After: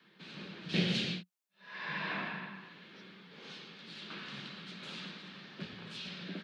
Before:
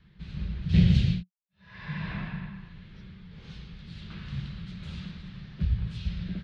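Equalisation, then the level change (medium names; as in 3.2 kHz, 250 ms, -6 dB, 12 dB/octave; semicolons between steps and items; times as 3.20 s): high-pass 270 Hz 24 dB/octave; band-stop 2 kHz, Q 23; +4.0 dB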